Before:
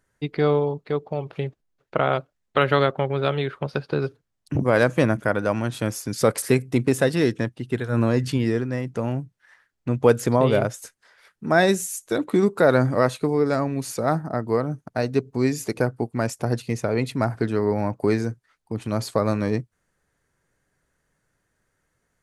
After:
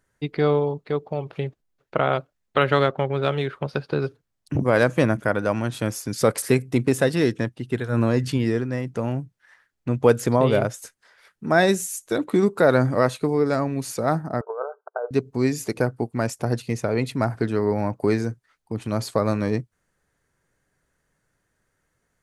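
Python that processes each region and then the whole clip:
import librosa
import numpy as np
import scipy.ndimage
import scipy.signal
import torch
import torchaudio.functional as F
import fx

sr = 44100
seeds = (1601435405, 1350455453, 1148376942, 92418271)

y = fx.chain(x, sr, fx.median_filter(points=5),
    fx.lowpass(hz=7800.0, slope=12), at=(2.7, 3.49))
y = fx.chain(y, sr, fx.brickwall_bandpass(low_hz=390.0, high_hz=1600.0),
    fx.over_compress(threshold_db=-28.0, ratio=-1.0), at=(14.41, 15.11))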